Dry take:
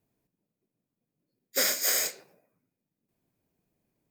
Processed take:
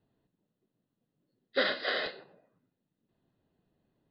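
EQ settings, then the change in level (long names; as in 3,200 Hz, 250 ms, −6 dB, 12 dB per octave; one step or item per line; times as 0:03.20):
Butterworth band-reject 2,300 Hz, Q 4.9
Butterworth low-pass 4,400 Hz 96 dB per octave
+3.0 dB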